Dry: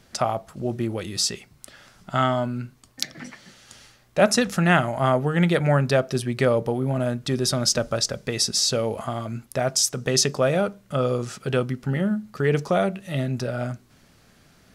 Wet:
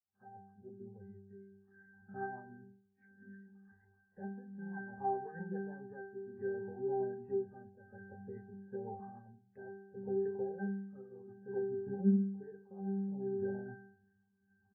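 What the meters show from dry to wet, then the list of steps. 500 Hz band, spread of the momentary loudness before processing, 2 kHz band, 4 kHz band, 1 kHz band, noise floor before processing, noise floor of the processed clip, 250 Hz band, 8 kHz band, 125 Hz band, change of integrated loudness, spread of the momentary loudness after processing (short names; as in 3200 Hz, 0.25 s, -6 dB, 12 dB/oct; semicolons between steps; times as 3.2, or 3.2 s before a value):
-16.0 dB, 11 LU, -23.5 dB, under -40 dB, -17.5 dB, -57 dBFS, -76 dBFS, -13.5 dB, under -40 dB, -20.5 dB, -16.5 dB, 19 LU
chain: opening faded in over 1.67 s; bell 73 Hz -8.5 dB 2.4 oct; notches 60/120/180/240/300/360/420 Hz; compressor 5:1, threshold -25 dBFS, peak gain reduction 11.5 dB; rotary speaker horn 7.5 Hz; LFO low-pass saw up 2.6 Hz 810–2400 Hz; envelope phaser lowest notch 500 Hz, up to 3700 Hz, full sweep at -27.5 dBFS; octave resonator G, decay 0.74 s; tremolo triangle 0.61 Hz, depth 80%; air absorption 490 m; doubler 25 ms -12.5 dB; gain +14 dB; MP3 8 kbps 11025 Hz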